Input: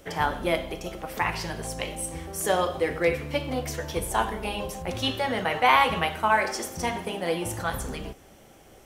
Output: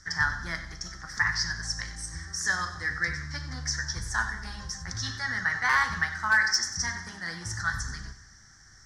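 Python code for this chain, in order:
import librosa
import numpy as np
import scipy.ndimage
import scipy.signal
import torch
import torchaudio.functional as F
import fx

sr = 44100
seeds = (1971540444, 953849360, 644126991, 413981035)

y = fx.curve_eq(x, sr, hz=(120.0, 540.0, 1800.0, 2600.0, 5400.0, 14000.0), db=(0, -27, 10, -25, 13, -29))
y = np.clip(y, -10.0 ** (-14.5 / 20.0), 10.0 ** (-14.5 / 20.0))
y = fx.echo_feedback(y, sr, ms=94, feedback_pct=46, wet_db=-14.5)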